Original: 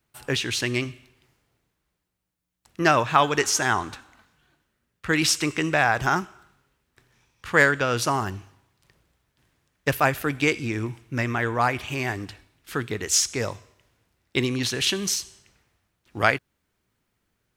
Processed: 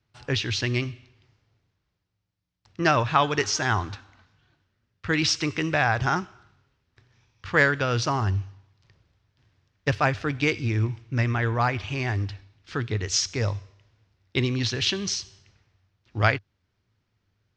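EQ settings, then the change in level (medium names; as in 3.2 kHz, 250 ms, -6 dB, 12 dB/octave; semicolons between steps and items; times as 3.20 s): four-pole ladder low-pass 6.5 kHz, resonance 40%; distance through air 72 m; peaking EQ 98 Hz +14 dB 0.63 oct; +6.0 dB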